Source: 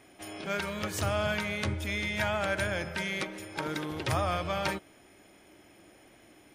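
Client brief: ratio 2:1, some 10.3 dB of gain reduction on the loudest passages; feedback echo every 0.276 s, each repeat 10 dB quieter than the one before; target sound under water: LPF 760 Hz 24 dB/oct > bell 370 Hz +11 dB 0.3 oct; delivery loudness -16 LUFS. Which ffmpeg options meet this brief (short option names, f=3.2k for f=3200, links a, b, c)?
-af "acompressor=threshold=-45dB:ratio=2,lowpass=f=760:w=0.5412,lowpass=f=760:w=1.3066,equalizer=f=370:t=o:w=0.3:g=11,aecho=1:1:276|552|828|1104:0.316|0.101|0.0324|0.0104,volume=26.5dB"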